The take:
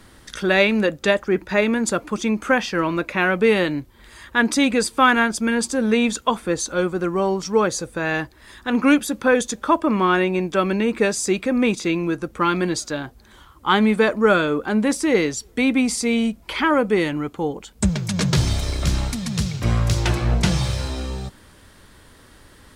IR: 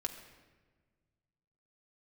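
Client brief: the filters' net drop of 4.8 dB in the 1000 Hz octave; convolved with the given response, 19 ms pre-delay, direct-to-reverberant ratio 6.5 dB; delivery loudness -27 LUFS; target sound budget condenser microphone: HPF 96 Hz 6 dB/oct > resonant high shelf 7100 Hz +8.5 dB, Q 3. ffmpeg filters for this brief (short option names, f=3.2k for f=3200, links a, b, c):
-filter_complex "[0:a]equalizer=f=1k:t=o:g=-6,asplit=2[a][b];[1:a]atrim=start_sample=2205,adelay=19[c];[b][c]afir=irnorm=-1:irlink=0,volume=-7dB[d];[a][d]amix=inputs=2:normalize=0,highpass=f=96:p=1,highshelf=f=7.1k:t=q:w=3:g=8.5,volume=-7dB"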